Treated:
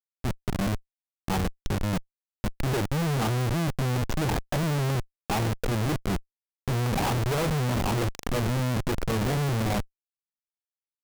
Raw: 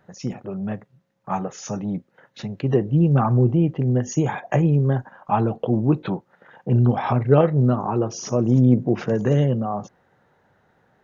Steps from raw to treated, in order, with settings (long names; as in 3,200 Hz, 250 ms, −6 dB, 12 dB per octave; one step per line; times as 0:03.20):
harmonic generator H 3 −17 dB, 4 −22 dB, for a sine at −2.5 dBFS
comparator with hysteresis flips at −30 dBFS